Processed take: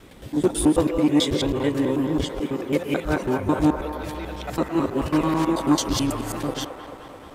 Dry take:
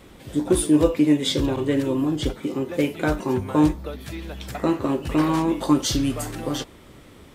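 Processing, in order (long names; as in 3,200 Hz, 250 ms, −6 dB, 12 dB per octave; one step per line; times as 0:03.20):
reversed piece by piece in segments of 109 ms
delay with a band-pass on its return 218 ms, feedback 71%, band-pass 960 Hz, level −6 dB
saturating transformer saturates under 360 Hz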